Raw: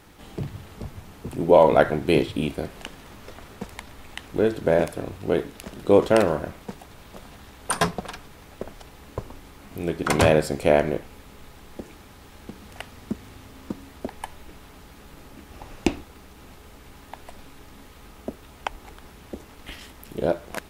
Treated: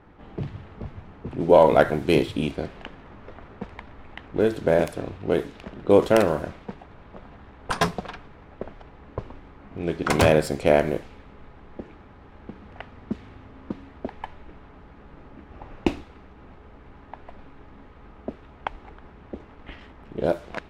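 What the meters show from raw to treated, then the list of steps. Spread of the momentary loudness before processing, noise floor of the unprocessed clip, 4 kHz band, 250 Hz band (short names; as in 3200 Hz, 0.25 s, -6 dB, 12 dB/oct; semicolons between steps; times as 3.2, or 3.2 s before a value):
22 LU, -48 dBFS, -1.0 dB, 0.0 dB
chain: tracing distortion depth 0.053 ms; low-pass opened by the level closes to 1500 Hz, open at -18 dBFS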